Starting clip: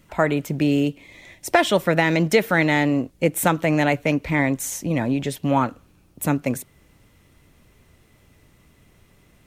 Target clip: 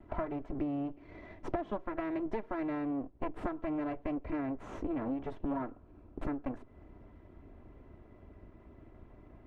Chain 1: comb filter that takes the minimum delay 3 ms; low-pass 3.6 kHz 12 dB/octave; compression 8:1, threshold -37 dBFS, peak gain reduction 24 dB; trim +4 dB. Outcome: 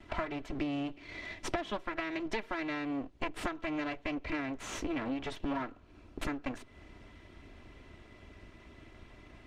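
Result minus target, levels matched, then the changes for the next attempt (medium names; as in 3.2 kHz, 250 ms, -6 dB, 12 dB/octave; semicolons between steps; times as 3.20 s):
4 kHz band +18.0 dB
change: low-pass 940 Hz 12 dB/octave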